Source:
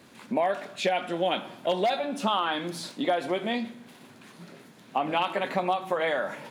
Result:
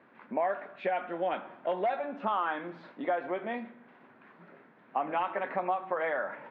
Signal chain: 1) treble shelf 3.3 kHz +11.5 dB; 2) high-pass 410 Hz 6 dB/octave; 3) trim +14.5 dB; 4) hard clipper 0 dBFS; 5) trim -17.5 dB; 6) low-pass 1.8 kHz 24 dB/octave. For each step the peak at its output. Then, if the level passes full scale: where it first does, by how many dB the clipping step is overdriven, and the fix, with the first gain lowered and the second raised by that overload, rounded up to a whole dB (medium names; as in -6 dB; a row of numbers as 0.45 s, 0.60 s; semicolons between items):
-10.0 dBFS, -10.0 dBFS, +4.5 dBFS, 0.0 dBFS, -17.5 dBFS, -17.5 dBFS; step 3, 4.5 dB; step 3 +9.5 dB, step 5 -12.5 dB